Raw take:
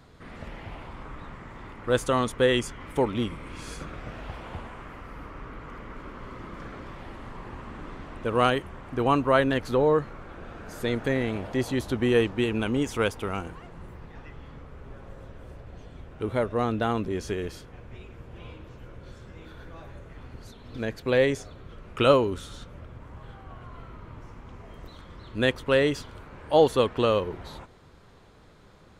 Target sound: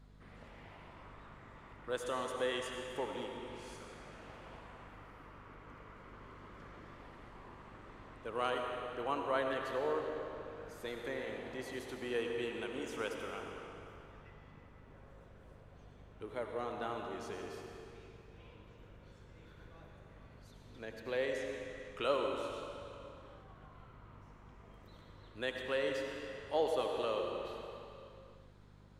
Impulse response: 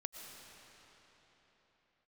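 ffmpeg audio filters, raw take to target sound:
-filter_complex "[0:a]acrossover=split=310[s0][s1];[s0]acompressor=threshold=0.00501:ratio=4[s2];[s2][s1]amix=inputs=2:normalize=0,aeval=exprs='val(0)+0.00562*(sin(2*PI*50*n/s)+sin(2*PI*2*50*n/s)/2+sin(2*PI*3*50*n/s)/3+sin(2*PI*4*50*n/s)/4+sin(2*PI*5*50*n/s)/5)':c=same[s3];[1:a]atrim=start_sample=2205,asetrate=66150,aresample=44100[s4];[s3][s4]afir=irnorm=-1:irlink=0,volume=0.531"

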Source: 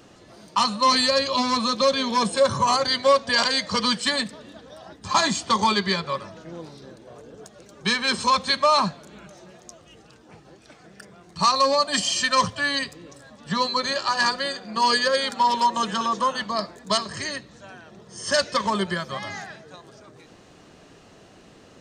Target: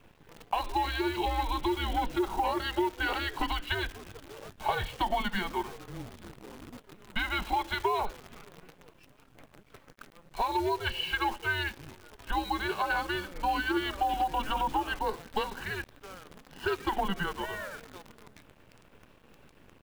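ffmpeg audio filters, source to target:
-af "acompressor=threshold=0.0891:ratio=16,highpass=f=170:t=q:w=0.5412,highpass=f=170:t=q:w=1.307,lowpass=f=3400:t=q:w=0.5176,lowpass=f=3400:t=q:w=0.7071,lowpass=f=3400:t=q:w=1.932,afreqshift=-190,atempo=1.1,acrusher=bits=8:dc=4:mix=0:aa=0.000001,volume=0.708"

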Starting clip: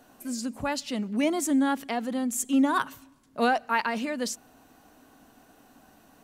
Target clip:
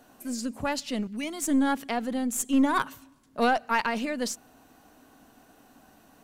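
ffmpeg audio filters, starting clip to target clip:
-filter_complex "[0:a]asettb=1/sr,asplit=3[s0][s1][s2];[s0]atrim=end=1.074[s3];[s1]atrim=start=1.07:end=1.48,asetpts=PTS-STARTPTS,afade=t=in:d=0.004:c=qsin,afade=t=out:st=0.406:d=0.004:c=qsin,equalizer=f=540:w=0.45:g=-12[s4];[s2]atrim=start=1.476[s5];[s3][s4]acrossfade=d=0.004:c1=hsin:c2=qsin[s6];[s6][s5]acrossfade=d=0.004:c1=qsin:c2=hsin,aeval=exprs='0.282*(cos(1*acos(clip(val(0)/0.282,-1,1)))-cos(1*PI/2))+0.0141*(cos(6*acos(clip(val(0)/0.282,-1,1)))-cos(6*PI/2))':c=same"

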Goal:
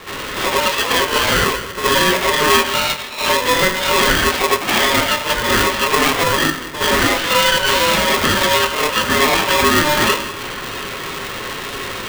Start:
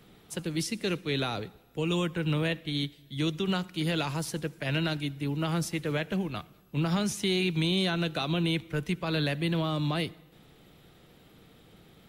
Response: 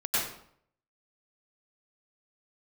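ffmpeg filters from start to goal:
-filter_complex "[0:a]highpass=f=280:t=q:w=0.5412,highpass=f=280:t=q:w=1.307,lowpass=f=3200:t=q:w=0.5176,lowpass=f=3200:t=q:w=0.7071,lowpass=f=3200:t=q:w=1.932,afreqshift=-140,asplit=2[s0][s1];[s1]acompressor=threshold=0.00891:ratio=6,volume=1.19[s2];[s0][s2]amix=inputs=2:normalize=0,asplit=2[s3][s4];[s4]highpass=f=720:p=1,volume=20,asoftclip=type=tanh:threshold=0.0891[s5];[s3][s5]amix=inputs=2:normalize=0,lowpass=f=2200:p=1,volume=0.501[s6];[1:a]atrim=start_sample=2205,afade=t=out:st=0.21:d=0.01,atrim=end_sample=9702,asetrate=66150,aresample=44100[s7];[s6][s7]afir=irnorm=-1:irlink=0,aeval=exprs='val(0)*sgn(sin(2*PI*750*n/s))':c=same,volume=2.51"

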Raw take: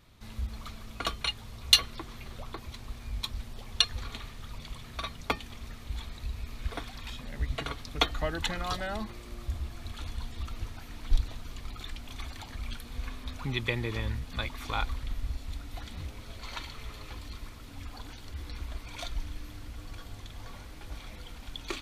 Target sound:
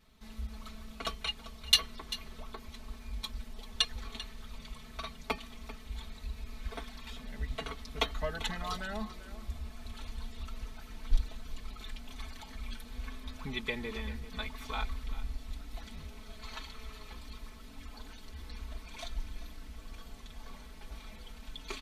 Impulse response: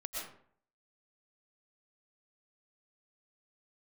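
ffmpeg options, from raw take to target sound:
-filter_complex "[0:a]aecho=1:1:4.6:0.93,asplit=2[s0][s1];[s1]aecho=0:1:392:0.178[s2];[s0][s2]amix=inputs=2:normalize=0,volume=0.447"

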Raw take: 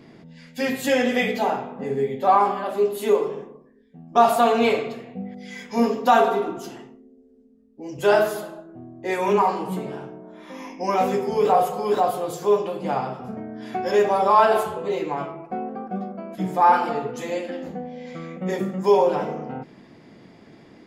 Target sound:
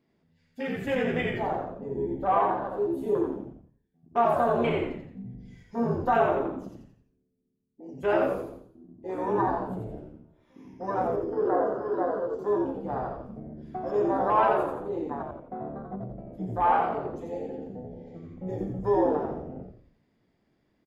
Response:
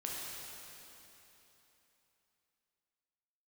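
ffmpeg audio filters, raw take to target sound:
-filter_complex "[0:a]afwtdn=0.0501,asettb=1/sr,asplit=3[s0][s1][s2];[s0]atrim=end=11.074[s3];[s1]atrim=start=11.07:end=12.39,asetpts=PTS-STARTPTS,afade=t=in:d=0.004:c=qsin,afade=t=out:st=1.316:d=0.004:c=qsin,highpass=360,equalizer=f=510:t=q:w=4:g=7,equalizer=f=800:t=q:w=4:g=-6,equalizer=f=1500:t=q:w=4:g=5,equalizer=f=2400:t=q:w=4:g=-9,equalizer=f=3700:t=q:w=4:g=-9,lowpass=f=5200:w=0.5412,lowpass=f=5200:w=1.3066[s4];[s2]atrim=start=12.386[s5];[s3][s4]acrossfade=d=0.004:c1=hsin:c2=qsin[s6];[s6][s5]acrossfade=d=0.004:c1=qsin:c2=hsin,asplit=2[s7][s8];[s8]asplit=5[s9][s10][s11][s12][s13];[s9]adelay=86,afreqshift=-72,volume=0.708[s14];[s10]adelay=172,afreqshift=-144,volume=0.299[s15];[s11]adelay=258,afreqshift=-216,volume=0.124[s16];[s12]adelay=344,afreqshift=-288,volume=0.0525[s17];[s13]adelay=430,afreqshift=-360,volume=0.0221[s18];[s14][s15][s16][s17][s18]amix=inputs=5:normalize=0[s19];[s7][s19]amix=inputs=2:normalize=0,volume=0.398"

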